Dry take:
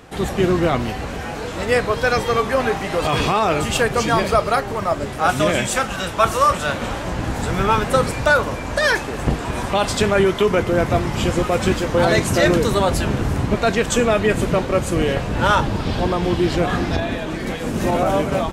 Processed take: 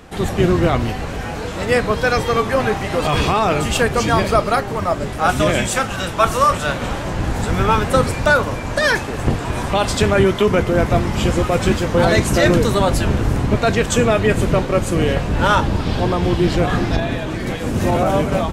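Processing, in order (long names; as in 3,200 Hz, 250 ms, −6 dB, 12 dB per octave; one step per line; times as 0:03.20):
sub-octave generator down 1 octave, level −1 dB
level +1 dB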